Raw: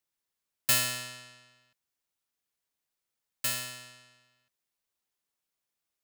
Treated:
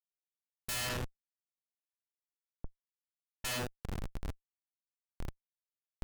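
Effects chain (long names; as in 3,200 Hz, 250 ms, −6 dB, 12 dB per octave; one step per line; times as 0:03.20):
wind on the microphone 120 Hz −42 dBFS
comparator with hysteresis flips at −32.5 dBFS
0:00.89–0:03.51: low-pass that shuts in the quiet parts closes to 630 Hz, open at −41 dBFS
level +1.5 dB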